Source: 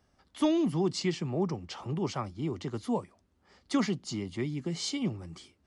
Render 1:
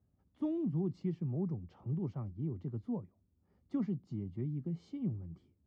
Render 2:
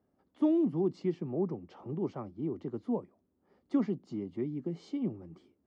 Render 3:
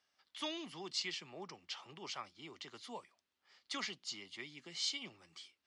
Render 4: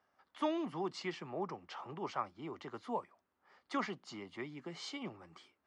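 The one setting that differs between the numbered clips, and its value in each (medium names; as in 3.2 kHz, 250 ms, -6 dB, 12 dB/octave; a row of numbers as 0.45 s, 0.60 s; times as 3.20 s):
band-pass filter, frequency: 110 Hz, 320 Hz, 3.4 kHz, 1.2 kHz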